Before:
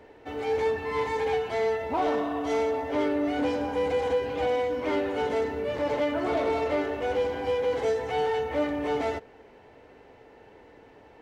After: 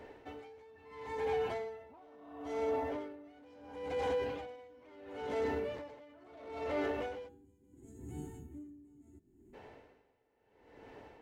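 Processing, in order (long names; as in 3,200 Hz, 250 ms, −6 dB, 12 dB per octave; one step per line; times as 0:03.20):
0:01.07–0:03.24: parametric band 4,100 Hz −4 dB 2.5 octaves
0:07.29–0:09.54: gain on a spectral selection 400–6,400 Hz −29 dB
hum removal 161.3 Hz, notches 31
brickwall limiter −27 dBFS, peak gain reduction 9.5 dB
tremolo with a sine in dB 0.73 Hz, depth 25 dB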